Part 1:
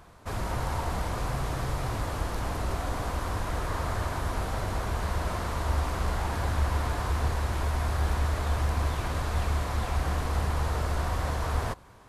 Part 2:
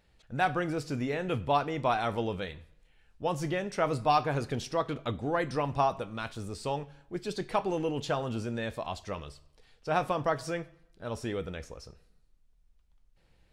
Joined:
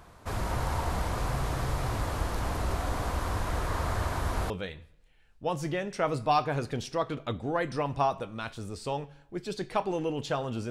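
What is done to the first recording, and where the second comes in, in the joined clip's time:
part 1
0:04.50: continue with part 2 from 0:02.29

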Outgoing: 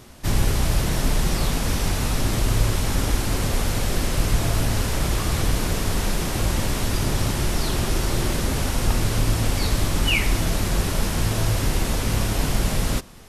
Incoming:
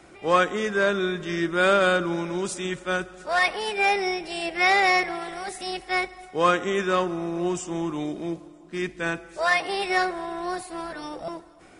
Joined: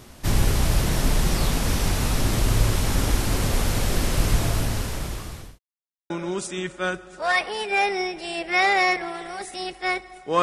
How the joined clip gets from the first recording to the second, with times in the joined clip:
outgoing
0:04.32–0:05.59: fade out linear
0:05.59–0:06.10: silence
0:06.10: continue with incoming from 0:02.17

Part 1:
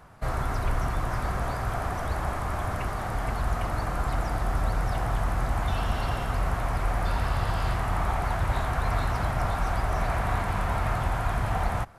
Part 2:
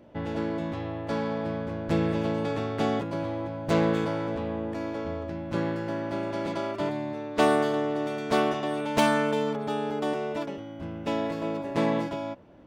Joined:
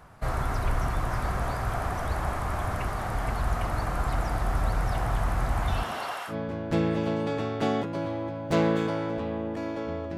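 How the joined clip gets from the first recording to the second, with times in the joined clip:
part 1
0:05.82–0:06.35: high-pass filter 180 Hz → 1,300 Hz
0:06.31: continue with part 2 from 0:01.49, crossfade 0.08 s

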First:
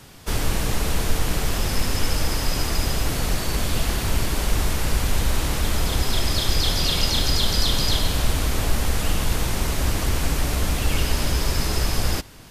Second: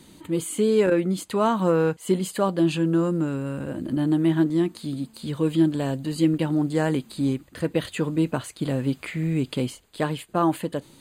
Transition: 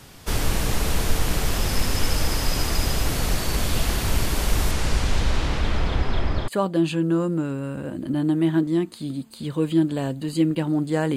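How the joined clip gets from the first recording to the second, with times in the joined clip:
first
0:04.71–0:06.48: low-pass filter 10,000 Hz → 1,400 Hz
0:06.48: continue with second from 0:02.31

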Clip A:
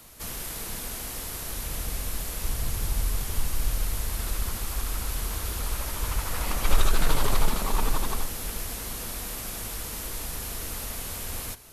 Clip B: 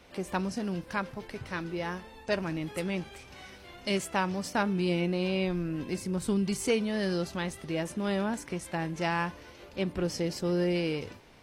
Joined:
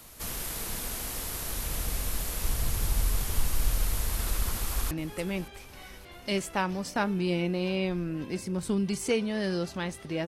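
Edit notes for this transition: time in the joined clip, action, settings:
clip A
0:04.40–0:04.91: delay throw 570 ms, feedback 65%, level −17.5 dB
0:04.91: continue with clip B from 0:02.50

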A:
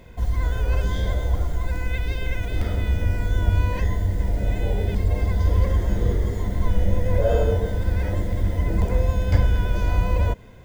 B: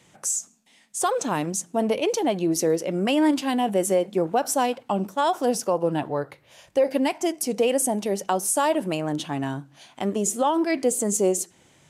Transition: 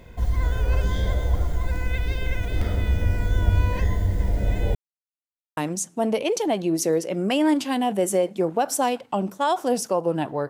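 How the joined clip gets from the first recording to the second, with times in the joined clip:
A
0:04.75–0:05.57: silence
0:05.57: continue with B from 0:01.34

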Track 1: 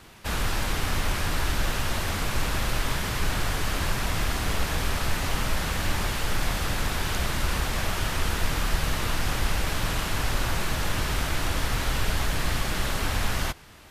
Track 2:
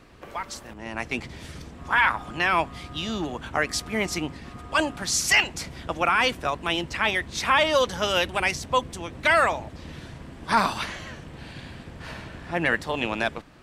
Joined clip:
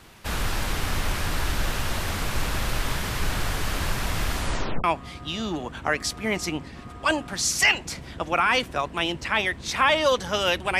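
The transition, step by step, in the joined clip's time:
track 1
0:04.36: tape stop 0.48 s
0:04.84: continue with track 2 from 0:02.53

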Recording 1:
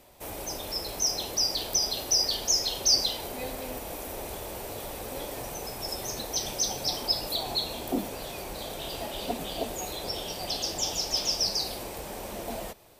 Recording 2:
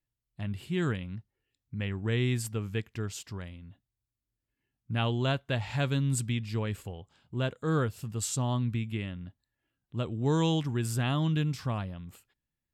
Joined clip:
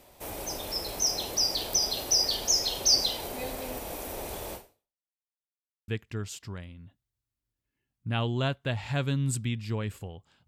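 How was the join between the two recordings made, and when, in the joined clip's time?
recording 1
0:04.54–0:05.11: fade out exponential
0:05.11–0:05.88: silence
0:05.88: continue with recording 2 from 0:02.72

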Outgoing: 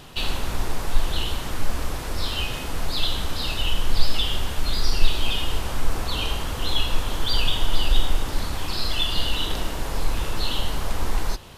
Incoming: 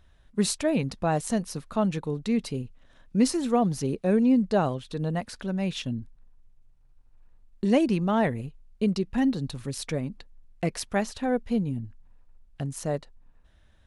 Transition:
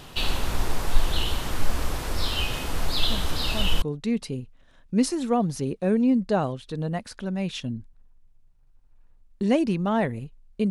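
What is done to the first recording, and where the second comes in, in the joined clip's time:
outgoing
0:03.09: mix in incoming from 0:01.31 0.73 s −9.5 dB
0:03.82: continue with incoming from 0:02.04

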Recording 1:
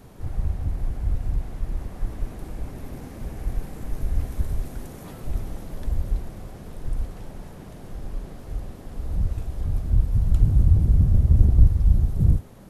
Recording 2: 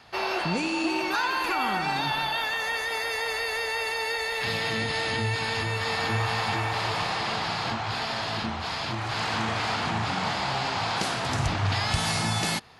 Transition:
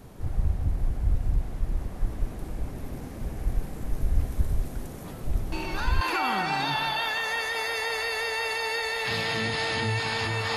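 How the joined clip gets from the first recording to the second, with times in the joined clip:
recording 1
0:05.52: mix in recording 2 from 0:00.88 0.49 s −6.5 dB
0:06.01: continue with recording 2 from 0:01.37

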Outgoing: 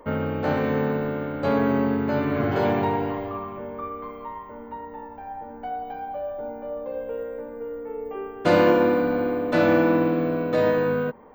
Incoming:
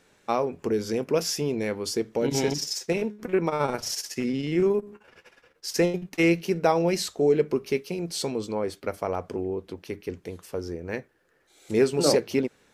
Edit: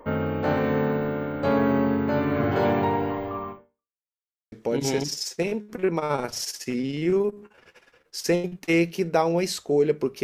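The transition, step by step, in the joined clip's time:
outgoing
0:03.51–0:04.03: fade out exponential
0:04.03–0:04.52: silence
0:04.52: continue with incoming from 0:02.02

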